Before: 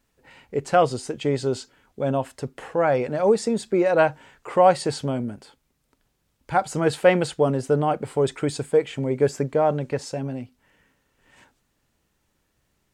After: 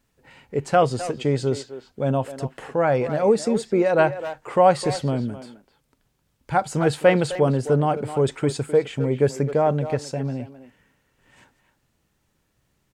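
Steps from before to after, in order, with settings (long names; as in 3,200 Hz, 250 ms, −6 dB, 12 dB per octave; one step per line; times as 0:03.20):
parametric band 130 Hz +4.5 dB 1.2 octaves
far-end echo of a speakerphone 260 ms, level −11 dB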